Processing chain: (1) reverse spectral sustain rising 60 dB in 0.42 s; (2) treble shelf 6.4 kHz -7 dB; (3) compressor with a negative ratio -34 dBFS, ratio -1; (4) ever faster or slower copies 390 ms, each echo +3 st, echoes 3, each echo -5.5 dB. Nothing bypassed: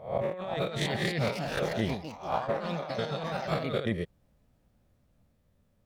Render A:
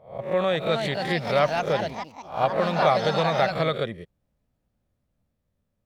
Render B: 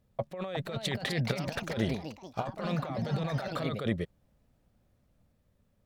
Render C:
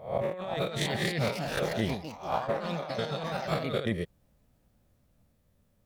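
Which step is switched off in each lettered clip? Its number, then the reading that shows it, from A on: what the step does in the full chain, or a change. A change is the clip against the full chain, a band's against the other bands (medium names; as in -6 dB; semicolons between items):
3, momentary loudness spread change +7 LU; 1, 1 kHz band -3.5 dB; 2, 8 kHz band +3.0 dB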